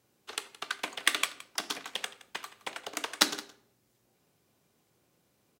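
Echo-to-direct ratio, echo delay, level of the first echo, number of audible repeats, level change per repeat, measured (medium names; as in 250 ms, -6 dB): -18.5 dB, 169 ms, -18.5 dB, 1, no regular repeats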